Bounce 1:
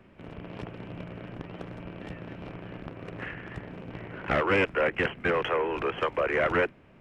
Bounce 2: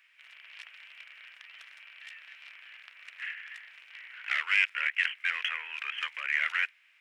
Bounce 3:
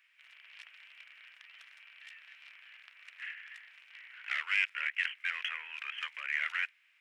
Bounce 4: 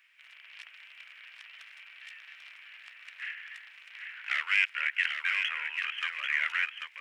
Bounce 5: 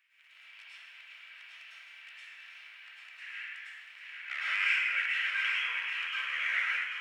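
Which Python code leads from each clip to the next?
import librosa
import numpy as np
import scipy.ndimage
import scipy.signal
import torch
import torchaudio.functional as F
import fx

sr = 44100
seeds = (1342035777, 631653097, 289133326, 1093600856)

y1 = scipy.signal.sosfilt(scipy.signal.cheby1(3, 1.0, 2000.0, 'highpass', fs=sr, output='sos'), x)
y1 = y1 * 10.0 ** (5.0 / 20.0)
y2 = fx.low_shelf(y1, sr, hz=280.0, db=-11.0)
y2 = y2 * 10.0 ** (-4.5 / 20.0)
y3 = y2 + 10.0 ** (-6.0 / 20.0) * np.pad(y2, (int(791 * sr / 1000.0), 0))[:len(y2)]
y3 = y3 * 10.0 ** (4.0 / 20.0)
y4 = fx.rev_plate(y3, sr, seeds[0], rt60_s=1.1, hf_ratio=0.9, predelay_ms=90, drr_db=-7.5)
y4 = y4 * 10.0 ** (-8.5 / 20.0)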